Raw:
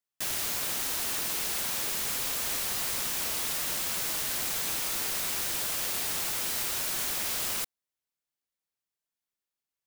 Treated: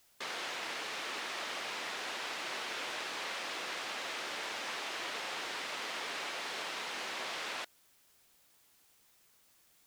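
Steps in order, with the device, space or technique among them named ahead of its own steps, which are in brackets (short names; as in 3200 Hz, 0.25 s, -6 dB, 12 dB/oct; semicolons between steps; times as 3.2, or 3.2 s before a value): split-band scrambled radio (four-band scrambler; BPF 360–3200 Hz; white noise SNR 26 dB)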